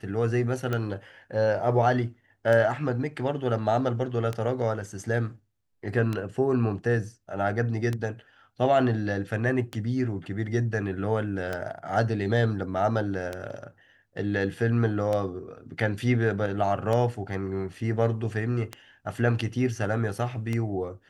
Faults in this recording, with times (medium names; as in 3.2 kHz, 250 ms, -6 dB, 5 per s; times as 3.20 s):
tick 33 1/3 rpm -16 dBFS